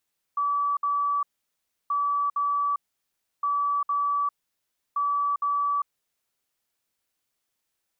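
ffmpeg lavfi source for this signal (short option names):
-f lavfi -i "aevalsrc='0.0794*sin(2*PI*1150*t)*clip(min(mod(mod(t,1.53),0.46),0.4-mod(mod(t,1.53),0.46))/0.005,0,1)*lt(mod(t,1.53),0.92)':d=6.12:s=44100"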